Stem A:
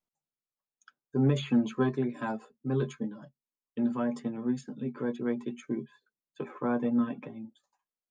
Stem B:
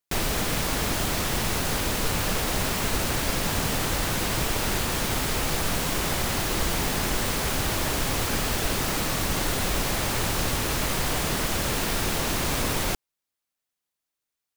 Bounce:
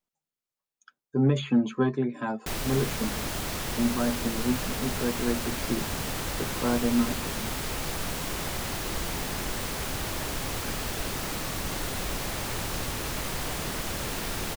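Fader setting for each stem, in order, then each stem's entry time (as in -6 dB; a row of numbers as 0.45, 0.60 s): +2.5, -6.0 dB; 0.00, 2.35 s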